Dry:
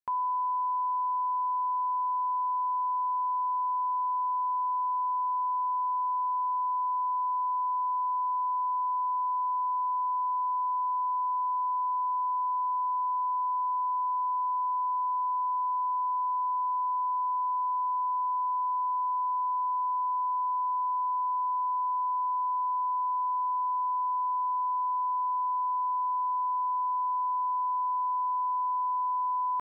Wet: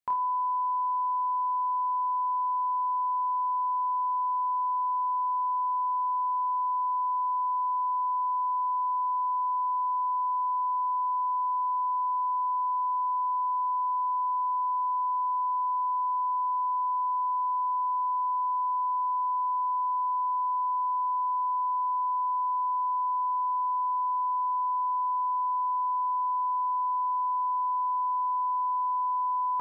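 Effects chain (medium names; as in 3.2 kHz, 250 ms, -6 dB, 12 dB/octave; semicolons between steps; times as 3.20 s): on a send: flutter echo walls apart 4.5 m, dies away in 0.32 s; on the sum: trim +2 dB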